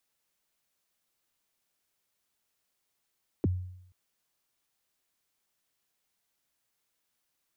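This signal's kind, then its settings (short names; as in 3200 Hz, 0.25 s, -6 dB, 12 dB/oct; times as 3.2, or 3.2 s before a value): kick drum length 0.48 s, from 440 Hz, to 91 Hz, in 25 ms, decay 0.75 s, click off, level -21 dB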